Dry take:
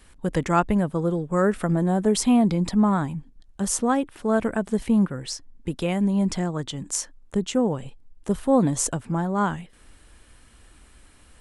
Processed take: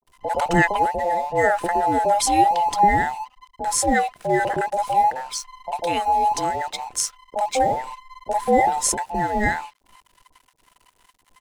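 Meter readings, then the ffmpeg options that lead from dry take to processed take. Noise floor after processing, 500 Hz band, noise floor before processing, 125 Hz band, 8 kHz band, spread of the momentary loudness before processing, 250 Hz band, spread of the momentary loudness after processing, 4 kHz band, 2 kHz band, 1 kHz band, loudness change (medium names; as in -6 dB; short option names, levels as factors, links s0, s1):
-64 dBFS, +2.0 dB, -54 dBFS, -7.5 dB, +3.5 dB, 11 LU, -7.5 dB, 11 LU, +4.0 dB, +10.0 dB, +11.5 dB, +2.5 dB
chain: -filter_complex "[0:a]afftfilt=real='real(if(between(b,1,1008),(2*floor((b-1)/48)+1)*48-b,b),0)':imag='imag(if(between(b,1,1008),(2*floor((b-1)/48)+1)*48-b,b),0)*if(between(b,1,1008),-1,1)':win_size=2048:overlap=0.75,aeval=exprs='sgn(val(0))*max(abs(val(0))-0.00447,0)':c=same,acrossover=split=690[s0][s1];[s1]adelay=50[s2];[s0][s2]amix=inputs=2:normalize=0,volume=1.68"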